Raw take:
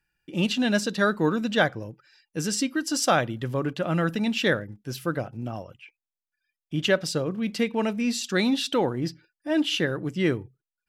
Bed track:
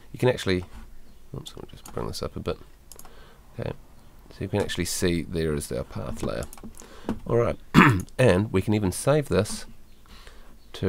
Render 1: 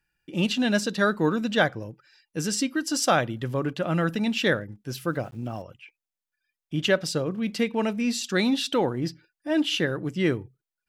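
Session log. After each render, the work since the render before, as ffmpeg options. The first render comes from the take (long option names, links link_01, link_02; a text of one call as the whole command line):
ffmpeg -i in.wav -filter_complex "[0:a]asettb=1/sr,asplit=3[link_01][link_02][link_03];[link_01]atrim=end=5.094[link_04];[link_02]atrim=start=5.09:end=5.62,asetpts=PTS-STARTPTS,afade=type=in:duration=0.004:curve=qsin,afade=type=out:start_time=0.526:duration=0.004:curve=qsin,aeval=exprs='val(0)*gte(abs(val(0)),0.00266)':channel_layout=same[link_05];[link_03]atrim=start=5.616[link_06];[link_04][link_05]acrossfade=duration=0.004:curve1=hsin:curve2=qsin[link_07];[link_07][link_06]acrossfade=duration=0.004:curve1=qsin:curve2=hsin" out.wav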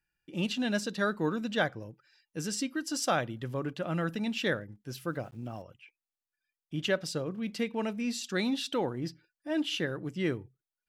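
ffmpeg -i in.wav -af "volume=-7dB" out.wav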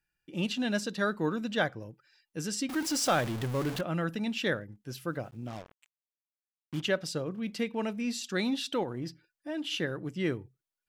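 ffmpeg -i in.wav -filter_complex "[0:a]asettb=1/sr,asplit=3[link_01][link_02][link_03];[link_01]atrim=end=2.694[link_04];[link_02]atrim=start=2.69:end=3.81,asetpts=PTS-STARTPTS,afade=type=in:duration=0.004:curve=qsin,afade=type=out:start_time=1.116:duration=0.004:curve=qsin,aeval=exprs='val(0)+0.5*0.0237*sgn(val(0))':channel_layout=same[link_05];[link_03]atrim=start=3.806[link_06];[link_04][link_05]acrossfade=duration=0.004:curve1=hsin:curve2=qsin[link_07];[link_07][link_06]acrossfade=duration=0.004:curve1=qsin:curve2=hsin,asplit=3[link_08][link_09][link_10];[link_08]afade=type=out:start_time=5.47:duration=0.02[link_11];[link_09]acrusher=bits=6:mix=0:aa=0.5,afade=type=in:start_time=5.47:duration=0.02,afade=type=out:start_time=6.8:duration=0.02[link_12];[link_10]afade=type=in:start_time=6.8:duration=0.02[link_13];[link_11][link_12][link_13]amix=inputs=3:normalize=0,asettb=1/sr,asplit=3[link_14][link_15][link_16];[link_14]atrim=end=8.834[link_17];[link_15]atrim=start=8.83:end=9.71,asetpts=PTS-STARTPTS,afade=type=in:duration=0.004:curve=qsin,afade=type=out:start_time=0.876:duration=0.004:curve=qsin,acompressor=threshold=-31dB:ratio=6:attack=3.2:release=140:knee=1:detection=peak[link_18];[link_16]atrim=start=9.706[link_19];[link_17][link_18]acrossfade=duration=0.004:curve1=hsin:curve2=qsin[link_20];[link_20][link_19]acrossfade=duration=0.004:curve1=qsin:curve2=hsin" out.wav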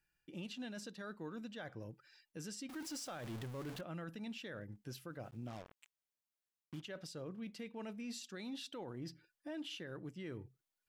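ffmpeg -i in.wav -af "areverse,acompressor=threshold=-37dB:ratio=10,areverse,alimiter=level_in=13.5dB:limit=-24dB:level=0:latency=1:release=240,volume=-13.5dB" out.wav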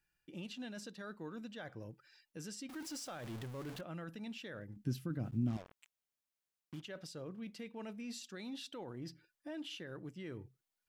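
ffmpeg -i in.wav -filter_complex "[0:a]asettb=1/sr,asplit=3[link_01][link_02][link_03];[link_01]atrim=end=4.764[link_04];[link_02]atrim=start=4.76:end=5.57,asetpts=PTS-STARTPTS,afade=type=in:duration=0.004:curve=qsin,afade=type=out:start_time=0.806:duration=0.004:curve=qsin,lowshelf=frequency=370:width_type=q:width=1.5:gain=11[link_05];[link_03]atrim=start=5.566[link_06];[link_04][link_05]acrossfade=duration=0.004:curve1=hsin:curve2=qsin[link_07];[link_07][link_06]acrossfade=duration=0.004:curve1=qsin:curve2=hsin" out.wav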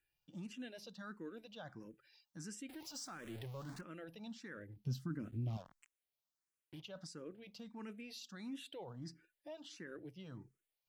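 ffmpeg -i in.wav -filter_complex "[0:a]asplit=2[link_01][link_02];[link_02]afreqshift=1.5[link_03];[link_01][link_03]amix=inputs=2:normalize=1" out.wav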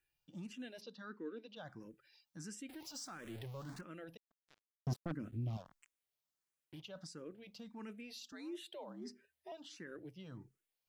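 ffmpeg -i in.wav -filter_complex "[0:a]asplit=3[link_01][link_02][link_03];[link_01]afade=type=out:start_time=0.8:duration=0.02[link_04];[link_02]highpass=240,equalizer=frequency=260:width_type=q:width=4:gain=9,equalizer=frequency=430:width_type=q:width=4:gain=6,equalizer=frequency=690:width_type=q:width=4:gain=-8,lowpass=frequency=5400:width=0.5412,lowpass=frequency=5400:width=1.3066,afade=type=in:start_time=0.8:duration=0.02,afade=type=out:start_time=1.55:duration=0.02[link_05];[link_03]afade=type=in:start_time=1.55:duration=0.02[link_06];[link_04][link_05][link_06]amix=inputs=3:normalize=0,asettb=1/sr,asplit=3[link_07][link_08][link_09];[link_07]atrim=end=4.174[link_10];[link_08]atrim=start=4.17:end=5.12,asetpts=PTS-STARTPTS,afade=type=in:duration=0.004:curve=qsin,afade=type=out:start_time=0.946:duration=0.004:curve=qsin,acrusher=bits=5:mix=0:aa=0.5[link_11];[link_09]atrim=start=5.116[link_12];[link_10][link_11]acrossfade=duration=0.004:curve1=hsin:curve2=qsin[link_13];[link_13][link_12]acrossfade=duration=0.004:curve1=qsin:curve2=hsin,asettb=1/sr,asplit=3[link_14][link_15][link_16];[link_14]atrim=end=8.324[link_17];[link_15]atrim=start=8.32:end=9.52,asetpts=PTS-STARTPTS,afade=type=in:duration=0.004:curve=qsin,afade=type=out:start_time=1.196:duration=0.004:curve=qsin,afreqshift=76[link_18];[link_16]atrim=start=9.516[link_19];[link_17][link_18]acrossfade=duration=0.004:curve1=hsin:curve2=qsin[link_20];[link_20][link_19]acrossfade=duration=0.004:curve1=qsin:curve2=hsin" out.wav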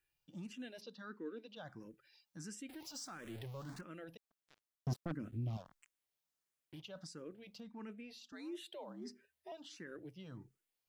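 ffmpeg -i in.wav -filter_complex "[0:a]asettb=1/sr,asplit=3[link_01][link_02][link_03];[link_01]atrim=end=7.604[link_04];[link_02]atrim=start=7.6:end=8.33,asetpts=PTS-STARTPTS,afade=type=in:duration=0.004:curve=qsin,afade=type=out:start_time=0.726:duration=0.004:curve=qsin,highshelf=frequency=4400:gain=-10.5[link_05];[link_03]atrim=start=8.326[link_06];[link_04][link_05]acrossfade=duration=0.004:curve1=hsin:curve2=qsin[link_07];[link_07][link_06]acrossfade=duration=0.004:curve1=qsin:curve2=hsin" out.wav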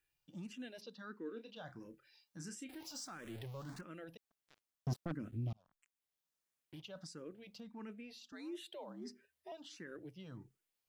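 ffmpeg -i in.wav -filter_complex "[0:a]asettb=1/sr,asplit=3[link_01][link_02][link_03];[link_01]atrim=end=1.264[link_04];[link_02]atrim=start=1.26:end=3.04,asetpts=PTS-STARTPTS,afade=type=in:duration=0.004:curve=qsin,afade=type=out:start_time=1.776:duration=0.004:curve=qsin,asplit=2[link_05][link_06];[link_06]adelay=31,volume=-9dB[link_07];[link_05][link_07]amix=inputs=2:normalize=0,atrim=end_sample=78498[link_08];[link_03]atrim=start=3.036[link_09];[link_04][link_08]acrossfade=duration=0.004:curve1=hsin:curve2=qsin[link_10];[link_10][link_09]acrossfade=duration=0.004:curve1=qsin:curve2=hsin,asplit=2[link_11][link_12];[link_11]atrim=end=5.53,asetpts=PTS-STARTPTS,afade=type=out:start_time=5.526:duration=0.004:curve=hsin[link_13];[link_12]atrim=start=5.53,asetpts=PTS-STARTPTS,afade=type=in:duration=1.23:curve=qsin[link_14];[link_13][link_14]concat=n=2:v=0:a=1" out.wav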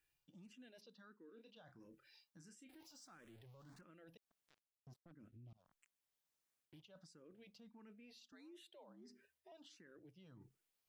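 ffmpeg -i in.wav -af "areverse,acompressor=threshold=-55dB:ratio=6,areverse,alimiter=level_in=29.5dB:limit=-24dB:level=0:latency=1:release=185,volume=-29.5dB" out.wav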